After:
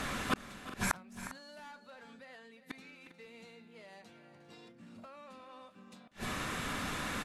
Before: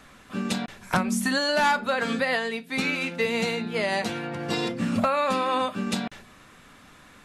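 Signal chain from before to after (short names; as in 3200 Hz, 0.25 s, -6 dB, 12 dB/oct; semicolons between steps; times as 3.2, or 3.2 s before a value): added harmonics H 5 -22 dB, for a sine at -14 dBFS; flipped gate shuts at -27 dBFS, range -40 dB; tapped delay 0.358/0.401 s -14.5/-16 dB; gain +10.5 dB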